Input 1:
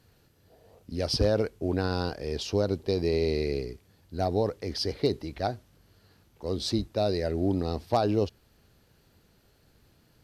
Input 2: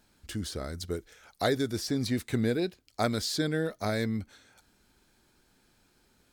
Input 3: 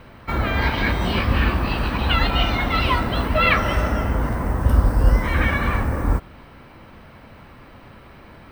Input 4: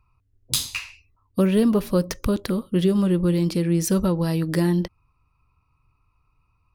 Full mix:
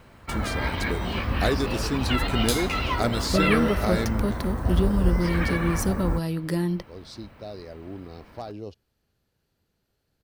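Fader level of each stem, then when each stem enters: −12.0, +2.0, −7.0, −5.0 decibels; 0.45, 0.00, 0.00, 1.95 seconds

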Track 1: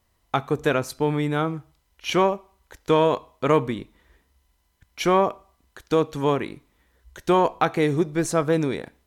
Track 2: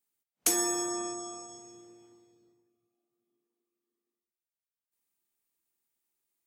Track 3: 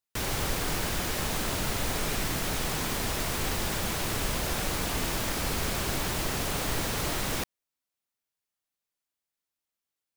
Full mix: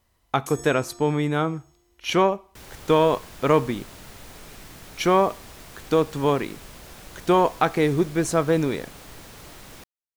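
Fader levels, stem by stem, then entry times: +0.5, −13.0, −13.5 decibels; 0.00, 0.00, 2.40 seconds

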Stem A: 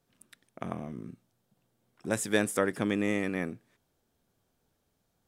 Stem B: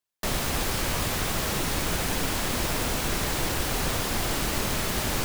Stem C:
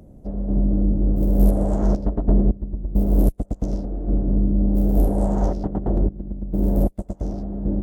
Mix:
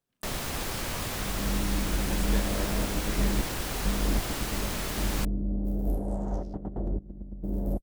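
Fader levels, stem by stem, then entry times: −12.0, −5.5, −11.0 decibels; 0.00, 0.00, 0.90 seconds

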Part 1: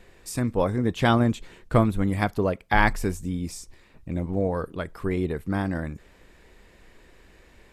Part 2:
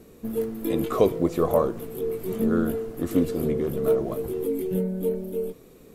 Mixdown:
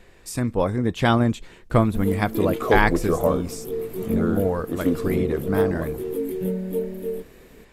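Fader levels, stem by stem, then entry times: +1.5, 0.0 decibels; 0.00, 1.70 seconds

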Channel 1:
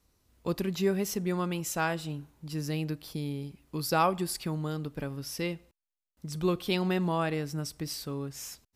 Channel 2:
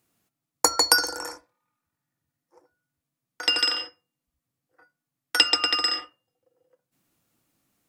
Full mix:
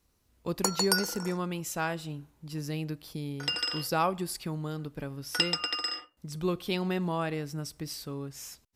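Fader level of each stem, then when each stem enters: −2.0, −8.5 decibels; 0.00, 0.00 seconds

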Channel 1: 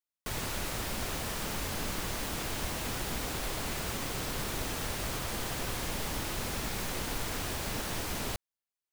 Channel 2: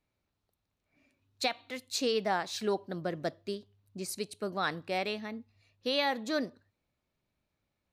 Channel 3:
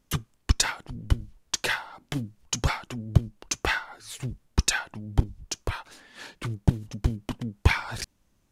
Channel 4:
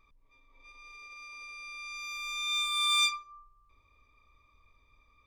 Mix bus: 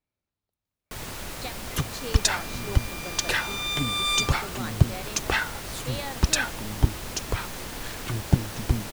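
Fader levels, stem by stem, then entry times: −1.0, −6.5, +1.0, +1.0 decibels; 0.65, 0.00, 1.65, 1.15 seconds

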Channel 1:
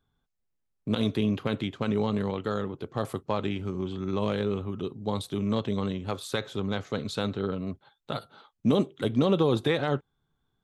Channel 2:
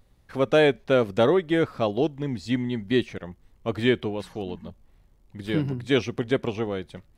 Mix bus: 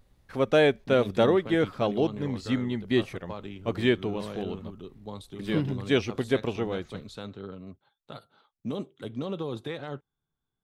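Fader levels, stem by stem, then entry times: −10.0, −2.0 decibels; 0.00, 0.00 seconds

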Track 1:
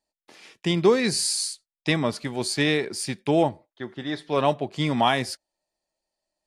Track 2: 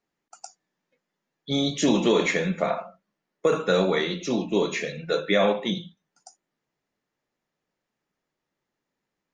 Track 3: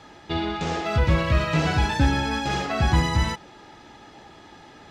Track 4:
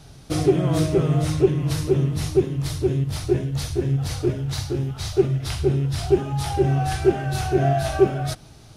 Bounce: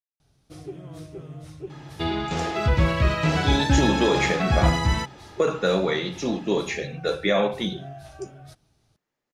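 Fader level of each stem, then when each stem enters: muted, −0.5 dB, 0.0 dB, −19.5 dB; muted, 1.95 s, 1.70 s, 0.20 s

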